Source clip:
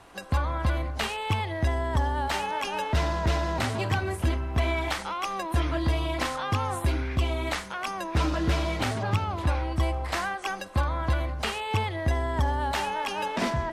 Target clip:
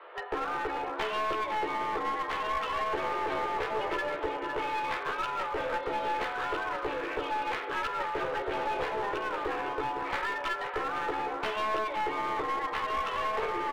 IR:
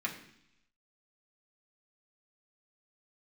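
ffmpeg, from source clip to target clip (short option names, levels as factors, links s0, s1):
-filter_complex "[0:a]aecho=1:1:507:0.251,asplit=2[s0][s1];[1:a]atrim=start_sample=2205,asetrate=27342,aresample=44100[s2];[s1][s2]afir=irnorm=-1:irlink=0,volume=0.251[s3];[s0][s3]amix=inputs=2:normalize=0,highpass=f=160:t=q:w=0.5412,highpass=f=160:t=q:w=1.307,lowpass=f=3400:t=q:w=0.5176,lowpass=f=3400:t=q:w=0.7071,lowpass=f=3400:t=q:w=1.932,afreqshift=210,aemphasis=mode=reproduction:type=riaa,acompressor=threshold=0.0355:ratio=6,asplit=2[s4][s5];[s5]adelay=14,volume=0.794[s6];[s4][s6]amix=inputs=2:normalize=0,aeval=exprs='clip(val(0),-1,0.0251)':c=same"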